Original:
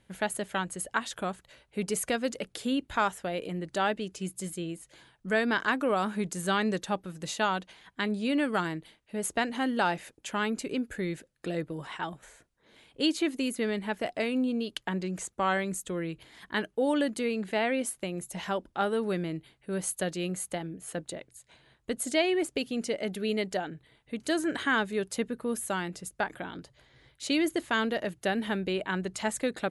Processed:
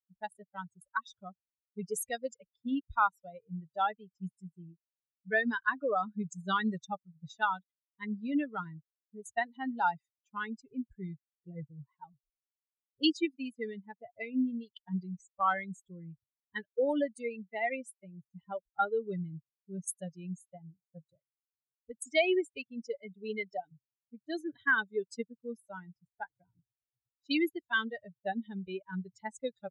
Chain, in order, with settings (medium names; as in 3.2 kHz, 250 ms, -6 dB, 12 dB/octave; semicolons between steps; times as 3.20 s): expander on every frequency bin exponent 3; level-controlled noise filter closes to 550 Hz, open at -34 dBFS; dynamic bell 1.4 kHz, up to +4 dB, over -49 dBFS, Q 0.83; trim +2 dB